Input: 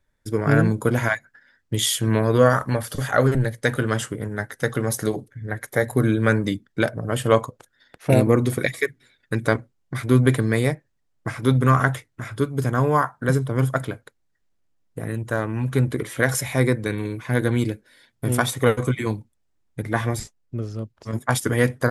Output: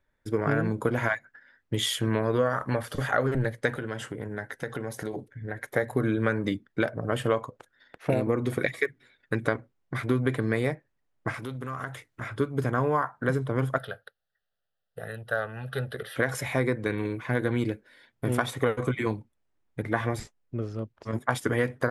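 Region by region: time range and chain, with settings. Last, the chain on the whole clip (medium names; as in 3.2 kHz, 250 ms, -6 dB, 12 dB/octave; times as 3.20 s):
3.76–5.71 s: band-stop 1.2 kHz, Q 7.8 + compression 5:1, threshold -27 dBFS
11.34–12.21 s: treble shelf 4.2 kHz +11 dB + compression 4:1, threshold -32 dBFS + loudspeaker Doppler distortion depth 0.13 ms
13.78–16.16 s: tilt EQ +2 dB/octave + static phaser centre 1.5 kHz, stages 8
whole clip: tone controls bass -5 dB, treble -11 dB; compression 6:1, threshold -21 dBFS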